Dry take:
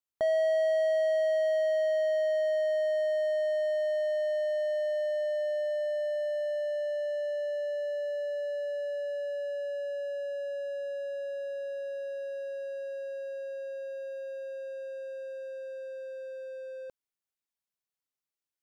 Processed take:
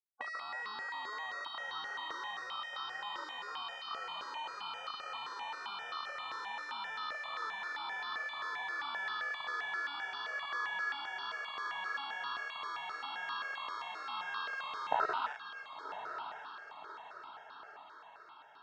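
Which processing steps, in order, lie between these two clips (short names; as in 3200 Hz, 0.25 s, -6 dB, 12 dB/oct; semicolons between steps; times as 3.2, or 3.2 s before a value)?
tracing distortion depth 0.25 ms; notch 870 Hz, Q 12; Schmitt trigger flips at -35 dBFS; resonant high shelf 1600 Hz -9 dB, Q 3; spectral gate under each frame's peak -20 dB weak; speaker cabinet 370–3700 Hz, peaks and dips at 900 Hz +7 dB, 1300 Hz +8 dB, 2500 Hz -7 dB; diffused feedback echo 1.094 s, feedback 54%, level -8.5 dB; step phaser 7.6 Hz 740–2100 Hz; gain +13.5 dB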